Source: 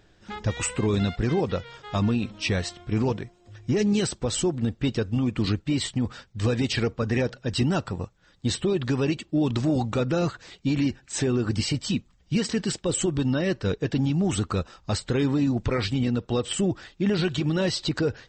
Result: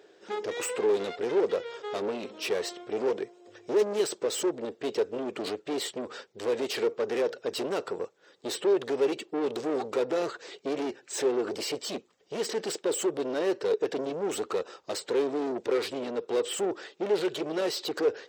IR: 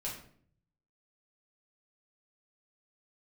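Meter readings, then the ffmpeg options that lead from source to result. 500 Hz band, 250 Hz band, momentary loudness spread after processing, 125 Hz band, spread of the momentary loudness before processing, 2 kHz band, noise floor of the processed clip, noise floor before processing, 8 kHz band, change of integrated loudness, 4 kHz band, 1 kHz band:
+2.0 dB, -10.0 dB, 8 LU, -26.0 dB, 6 LU, -5.0 dB, -63 dBFS, -60 dBFS, -4.5 dB, -4.0 dB, -5.0 dB, -1.5 dB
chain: -af "asoftclip=type=tanh:threshold=-29.5dB,highpass=f=420:t=q:w=4.2"

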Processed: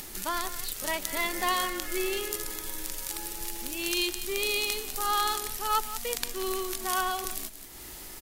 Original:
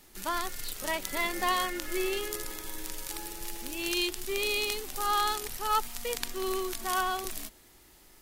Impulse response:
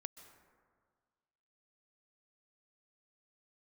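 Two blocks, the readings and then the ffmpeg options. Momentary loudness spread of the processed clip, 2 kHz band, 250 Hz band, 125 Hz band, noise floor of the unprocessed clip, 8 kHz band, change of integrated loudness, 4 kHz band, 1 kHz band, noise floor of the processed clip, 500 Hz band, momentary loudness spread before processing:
8 LU, +1.0 dB, 0.0 dB, +0.5 dB, -57 dBFS, +3.5 dB, +1.5 dB, +2.0 dB, +0.5 dB, -44 dBFS, 0.0 dB, 10 LU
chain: -af "highshelf=f=5k:g=4.5,aecho=1:1:179:0.2,acompressor=mode=upward:threshold=-31dB:ratio=2.5"

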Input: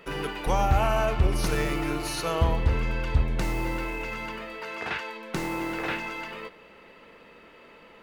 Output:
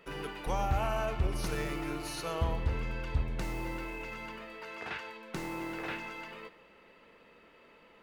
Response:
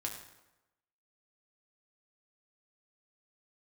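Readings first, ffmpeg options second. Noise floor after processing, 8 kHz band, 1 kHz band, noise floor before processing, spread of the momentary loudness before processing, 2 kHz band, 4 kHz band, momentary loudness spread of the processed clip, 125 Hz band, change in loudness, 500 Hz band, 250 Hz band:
-60 dBFS, -8.0 dB, -8.0 dB, -52 dBFS, 11 LU, -8.0 dB, -8.0 dB, 11 LU, -8.0 dB, -8.0 dB, -8.0 dB, -7.5 dB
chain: -filter_complex "[0:a]asplit=2[a][b];[1:a]atrim=start_sample=2205,adelay=127[c];[b][c]afir=irnorm=-1:irlink=0,volume=-18dB[d];[a][d]amix=inputs=2:normalize=0,volume=-8dB"

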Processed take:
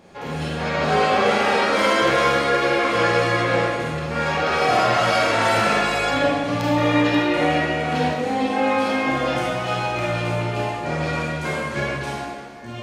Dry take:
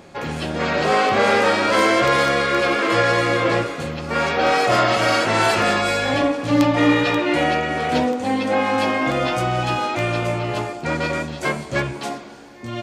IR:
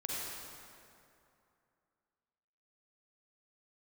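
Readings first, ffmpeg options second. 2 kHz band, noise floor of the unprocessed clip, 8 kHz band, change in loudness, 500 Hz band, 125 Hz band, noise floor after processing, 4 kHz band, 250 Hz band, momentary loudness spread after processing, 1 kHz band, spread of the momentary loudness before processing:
-1.0 dB, -36 dBFS, -2.5 dB, -1.0 dB, -1.0 dB, 0.0 dB, -33 dBFS, -1.5 dB, -2.5 dB, 8 LU, -0.5 dB, 9 LU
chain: -filter_complex "[0:a]bandreject=f=7.6k:w=19[a];[1:a]atrim=start_sample=2205,asetrate=70560,aresample=44100[b];[a][b]afir=irnorm=-1:irlink=0"

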